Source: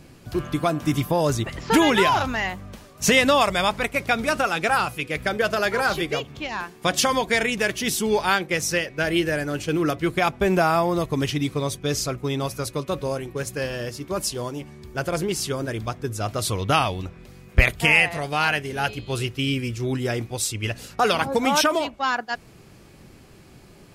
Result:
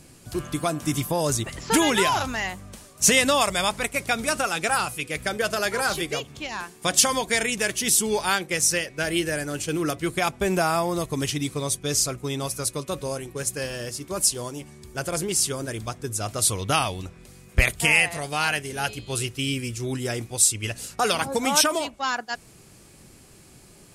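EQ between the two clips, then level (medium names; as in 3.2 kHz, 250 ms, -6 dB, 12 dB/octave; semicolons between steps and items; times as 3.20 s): peaking EQ 8.9 kHz +13.5 dB 1.3 oct; -3.5 dB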